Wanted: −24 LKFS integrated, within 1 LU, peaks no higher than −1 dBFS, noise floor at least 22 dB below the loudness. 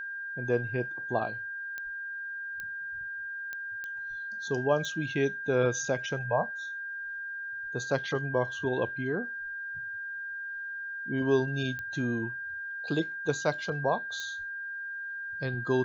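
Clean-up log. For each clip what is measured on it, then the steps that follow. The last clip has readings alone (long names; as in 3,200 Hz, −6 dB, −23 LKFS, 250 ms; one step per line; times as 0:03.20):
number of clicks 7; interfering tone 1,600 Hz; level of the tone −35 dBFS; integrated loudness −32.5 LKFS; sample peak −12.5 dBFS; target loudness −24.0 LKFS
→ click removal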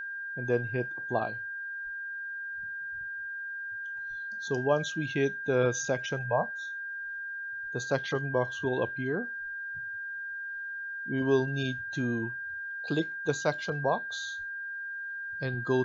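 number of clicks 0; interfering tone 1,600 Hz; level of the tone −35 dBFS
→ notch filter 1,600 Hz, Q 30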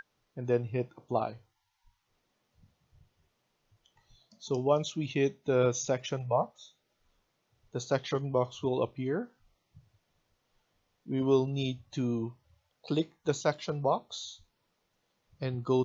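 interfering tone none found; integrated loudness −32.0 LKFS; sample peak −13.0 dBFS; target loudness −24.0 LKFS
→ level +8 dB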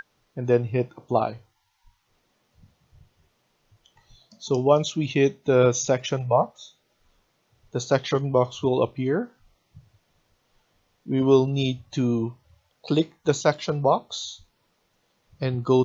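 integrated loudness −24.0 LKFS; sample peak −5.0 dBFS; background noise floor −70 dBFS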